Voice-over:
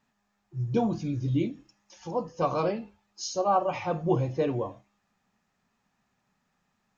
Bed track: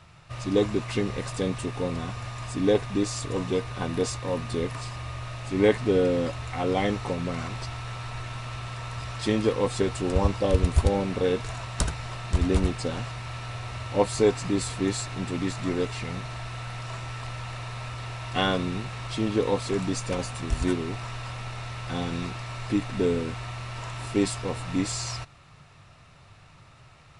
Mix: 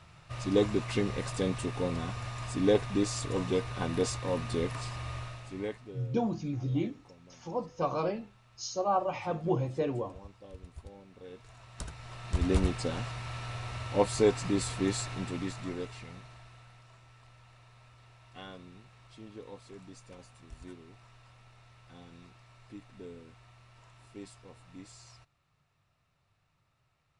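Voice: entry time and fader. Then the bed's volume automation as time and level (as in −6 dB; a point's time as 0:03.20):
5.40 s, −4.0 dB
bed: 0:05.18 −3 dB
0:06.03 −26.5 dB
0:11.10 −26.5 dB
0:12.52 −3.5 dB
0:15.07 −3.5 dB
0:16.93 −22 dB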